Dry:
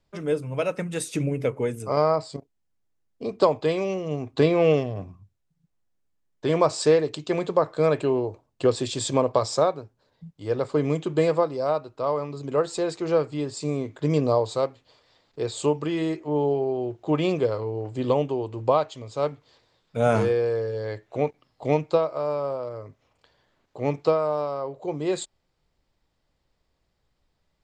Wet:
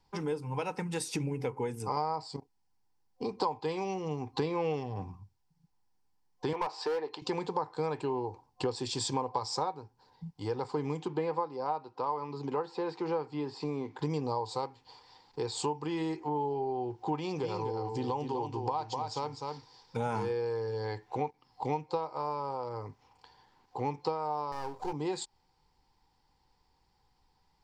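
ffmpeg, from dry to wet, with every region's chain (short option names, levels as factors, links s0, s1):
-filter_complex "[0:a]asettb=1/sr,asplit=3[s0][s1][s2];[s0]atrim=end=6.534[s3];[s1]atrim=start=6.53:end=7.22,asetpts=PTS-STARTPTS,afade=t=in:d=0.004:c=qsin,afade=t=out:st=0.686:d=0.004:c=qsin,highpass=450,lowpass=2800,asoftclip=type=hard:threshold=0.112[s4];[s2]atrim=start=7.216[s5];[s3][s4]acrossfade=d=0.004:c1=hsin:c2=qsin[s6];[s6][s5]acrossfade=d=0.004:c1=qsin:c2=hsin,asettb=1/sr,asplit=3[s7][s8][s9];[s7]atrim=end=11.084[s10];[s8]atrim=start=11.08:end=13.99,asetpts=PTS-STARTPTS,afade=t=in:d=0.004:c=qsin,afade=t=out:st=2.906:d=0.004:c=qsin,acrossover=split=3300[s11][s12];[s12]acompressor=threshold=0.00224:ratio=4:attack=1:release=60[s13];[s11][s13]amix=inputs=2:normalize=0,highpass=150,lowpass=5300[s14];[s9]atrim=start=13.986[s15];[s10][s14]acrossfade=d=0.004:c1=hsin:c2=qsin[s16];[s16][s15]acrossfade=d=0.004:c1=qsin:c2=hsin,asettb=1/sr,asplit=3[s17][s18][s19];[s17]atrim=end=17.184[s20];[s18]atrim=start=17.18:end=19.97,asetpts=PTS-STARTPTS,afade=t=in:d=0.004:c=qsin,afade=t=out:st=2.786:d=0.004:c=qsin,equalizer=f=5600:w=2.5:g=7.5,acompressor=threshold=0.0631:ratio=2:attack=3.2:release=140:knee=1:detection=peak,aecho=1:1:251:0.447,atrim=end_sample=123039[s21];[s19]atrim=start=19.966[s22];[s20][s21]acrossfade=d=0.004:c1=hsin:c2=qsin[s23];[s23][s22]acrossfade=d=0.004:c1=qsin:c2=hsin,asettb=1/sr,asplit=3[s24][s25][s26];[s24]atrim=end=24.524[s27];[s25]atrim=start=24.52:end=24.93,asetpts=PTS-STARTPTS,afade=t=in:d=0.004:c=qsin,afade=t=out:st=0.406:d=0.004:c=qsin,aeval=exprs='if(lt(val(0),0),0.251*val(0),val(0))':c=same,highshelf=f=3900:g=11,asplit=2[s28][s29];[s29]adelay=25,volume=0.251[s30];[s28][s30]amix=inputs=2:normalize=0,atrim=end_sample=18081[s31];[s26]atrim=start=24.926[s32];[s27][s31]acrossfade=d=0.004:c1=hsin:c2=qsin[s33];[s33][s32]acrossfade=d=0.004:c1=qsin:c2=hsin,superequalizer=8b=0.398:9b=3.55:14b=2,acompressor=threshold=0.0224:ratio=3"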